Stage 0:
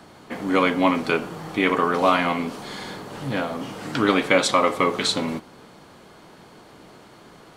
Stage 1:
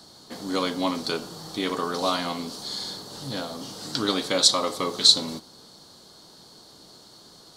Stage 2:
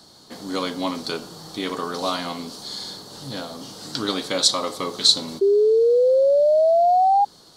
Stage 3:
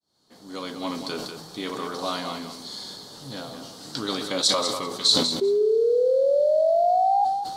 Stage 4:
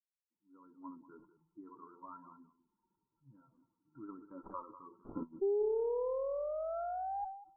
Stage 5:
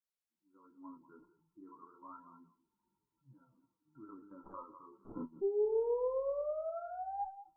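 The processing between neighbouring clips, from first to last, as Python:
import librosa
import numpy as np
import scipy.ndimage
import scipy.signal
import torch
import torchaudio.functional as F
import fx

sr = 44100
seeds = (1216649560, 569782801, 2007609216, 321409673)

y1 = fx.high_shelf_res(x, sr, hz=3200.0, db=10.0, q=3.0)
y1 = F.gain(torch.from_numpy(y1), -6.5).numpy()
y2 = fx.spec_paint(y1, sr, seeds[0], shape='rise', start_s=5.41, length_s=1.84, low_hz=390.0, high_hz=820.0, level_db=-16.0)
y3 = fx.fade_in_head(y2, sr, length_s=0.98)
y3 = fx.echo_feedback(y3, sr, ms=194, feedback_pct=15, wet_db=-8.5)
y3 = fx.sustainer(y3, sr, db_per_s=46.0)
y3 = F.gain(torch.from_numpy(y3), -4.5).numpy()
y4 = fx.bin_expand(y3, sr, power=2.0)
y4 = fx.tube_stage(y4, sr, drive_db=12.0, bias=0.6)
y4 = scipy.signal.sosfilt(scipy.signal.cheby1(6, 9, 1400.0, 'lowpass', fs=sr, output='sos'), y4)
y4 = F.gain(torch.from_numpy(y4), -5.0).numpy()
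y5 = fx.detune_double(y4, sr, cents=12)
y5 = F.gain(torch.from_numpy(y5), 2.0).numpy()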